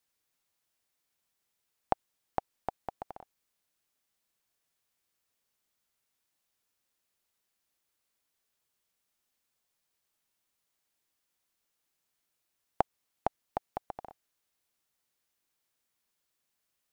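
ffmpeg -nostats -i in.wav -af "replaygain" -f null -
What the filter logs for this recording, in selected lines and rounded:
track_gain = +40.6 dB
track_peak = 0.284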